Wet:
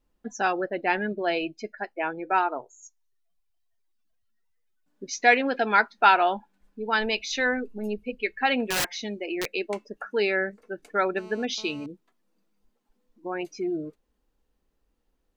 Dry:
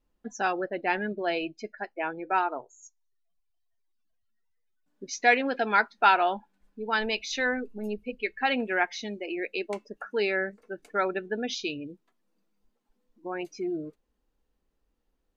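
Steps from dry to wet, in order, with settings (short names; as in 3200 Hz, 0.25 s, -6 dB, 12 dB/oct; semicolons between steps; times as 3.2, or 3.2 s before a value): 8.64–9.48 wrapped overs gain 22 dB; 11.17–11.86 GSM buzz -50 dBFS; gain +2.5 dB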